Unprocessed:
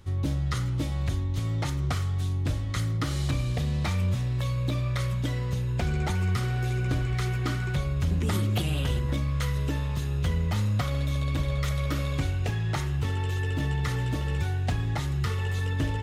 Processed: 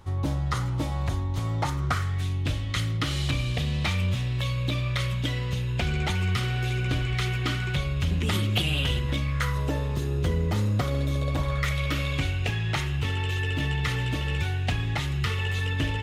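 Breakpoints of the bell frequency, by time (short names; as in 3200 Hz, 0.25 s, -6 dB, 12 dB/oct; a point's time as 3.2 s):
bell +10 dB 1.1 oct
1.62 s 890 Hz
2.43 s 2900 Hz
9.22 s 2900 Hz
9.9 s 370 Hz
11.16 s 370 Hz
11.75 s 2700 Hz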